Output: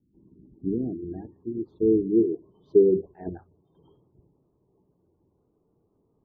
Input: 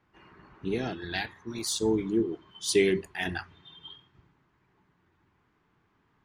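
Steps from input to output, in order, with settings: low-pass sweep 250 Hz -> 500 Hz, 0.1–2.87; spectral gate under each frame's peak -30 dB strong; 3.14–3.75 upward expander 1.5:1, over -42 dBFS

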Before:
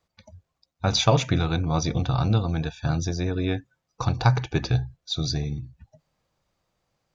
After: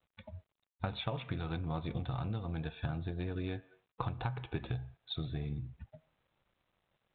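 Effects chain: on a send at -16 dB: reverb RT60 0.60 s, pre-delay 3 ms; on the sum: compressor 16:1, threshold -33 dBFS, peak gain reduction 20.5 dB; G.726 32 kbps 8000 Hz

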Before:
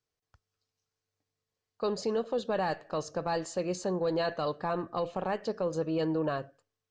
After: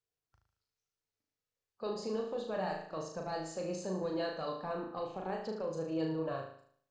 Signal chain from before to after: bin magnitudes rounded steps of 15 dB; flutter echo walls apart 6.4 m, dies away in 0.6 s; gain -8 dB

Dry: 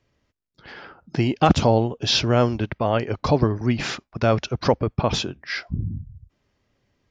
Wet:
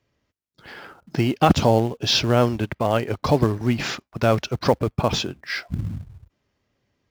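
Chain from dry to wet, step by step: HPF 52 Hz 6 dB/oct; in parallel at -9.5 dB: companded quantiser 4-bit; on the sum: gain -2 dB

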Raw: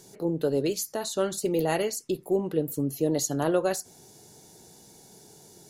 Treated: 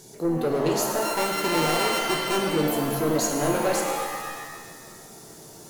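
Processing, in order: 1.02–2.38 sample sorter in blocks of 32 samples; soft clip -24.5 dBFS, distortion -11 dB; shimmer reverb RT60 1.5 s, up +7 st, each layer -2 dB, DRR 2 dB; gain +3.5 dB

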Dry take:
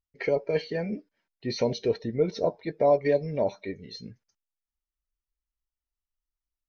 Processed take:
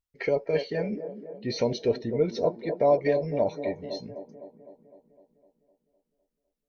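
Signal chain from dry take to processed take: band-limited delay 0.254 s, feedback 59%, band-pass 430 Hz, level -8.5 dB

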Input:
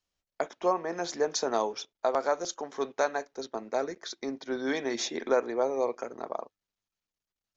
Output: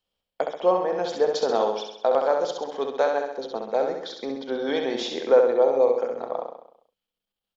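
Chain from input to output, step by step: thirty-one-band EQ 200 Hz +6 dB, 500 Hz +11 dB, 800 Hz +5 dB, 2000 Hz -3 dB, 3150 Hz +10 dB, 6300 Hz -11 dB; on a send: feedback echo 66 ms, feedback 54%, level -5 dB

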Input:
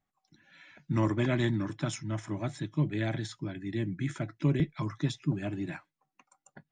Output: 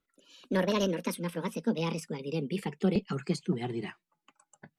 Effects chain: speed glide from 180% -> 101%

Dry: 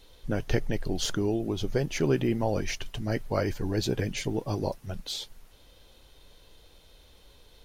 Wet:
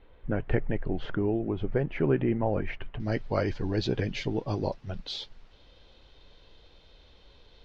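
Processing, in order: LPF 2300 Hz 24 dB/oct, from 3 s 4700 Hz

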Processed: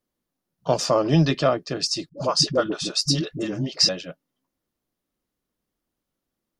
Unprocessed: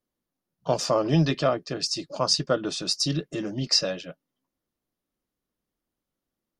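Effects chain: 2.09–3.89 dispersion highs, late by 82 ms, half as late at 340 Hz; gain +3 dB

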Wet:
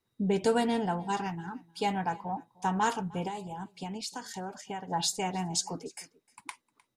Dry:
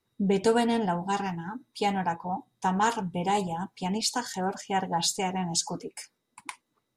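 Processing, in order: 3.27–4.88 compressor 6:1, threshold -32 dBFS, peak gain reduction 10.5 dB; echo 0.306 s -23.5 dB; gain -3 dB

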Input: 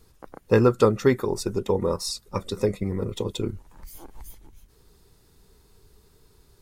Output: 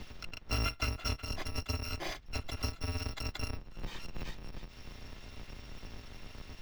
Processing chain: FFT order left unsorted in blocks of 256 samples; air absorption 240 m; three-band squash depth 70%; gain +1 dB

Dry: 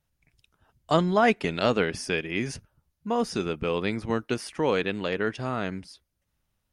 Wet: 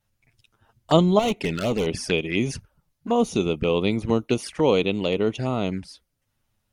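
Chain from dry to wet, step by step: 1.19–1.87 overloaded stage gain 25.5 dB; envelope flanger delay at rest 9.3 ms, full sweep at -26 dBFS; gain +6.5 dB

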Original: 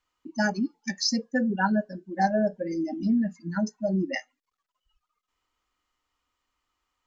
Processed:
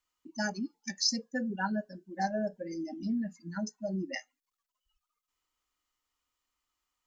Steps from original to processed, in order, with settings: high shelf 4800 Hz +12 dB; gain -8.5 dB

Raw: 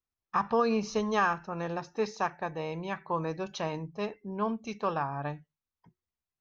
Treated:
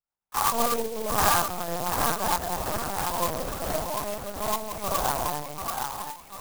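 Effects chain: HPF 47 Hz 24 dB/oct; spectral gate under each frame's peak -30 dB strong; resonant low shelf 440 Hz -9.5 dB, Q 1.5; split-band echo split 650 Hz, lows 0.162 s, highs 0.738 s, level -4 dB; non-linear reverb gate 0.12 s rising, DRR -5.5 dB; LPC vocoder at 8 kHz pitch kept; clock jitter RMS 0.096 ms; gain -2.5 dB

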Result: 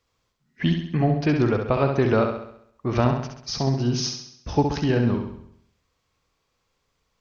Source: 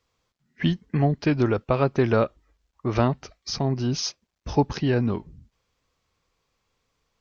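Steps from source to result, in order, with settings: flutter echo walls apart 11.4 m, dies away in 0.69 s

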